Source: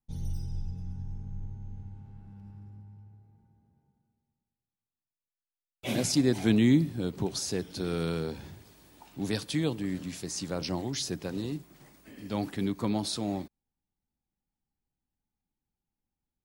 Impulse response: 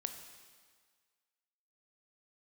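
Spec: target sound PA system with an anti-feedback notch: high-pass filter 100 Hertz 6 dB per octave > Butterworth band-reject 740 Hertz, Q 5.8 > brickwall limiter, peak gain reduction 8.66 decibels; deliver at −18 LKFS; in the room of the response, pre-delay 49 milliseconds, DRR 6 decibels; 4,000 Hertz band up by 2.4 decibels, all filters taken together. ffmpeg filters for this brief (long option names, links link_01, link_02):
-filter_complex "[0:a]equalizer=frequency=4000:width_type=o:gain=3,asplit=2[link_01][link_02];[1:a]atrim=start_sample=2205,adelay=49[link_03];[link_02][link_03]afir=irnorm=-1:irlink=0,volume=-5dB[link_04];[link_01][link_04]amix=inputs=2:normalize=0,highpass=frequency=100:poles=1,asuperstop=centerf=740:order=8:qfactor=5.8,volume=14.5dB,alimiter=limit=-6dB:level=0:latency=1"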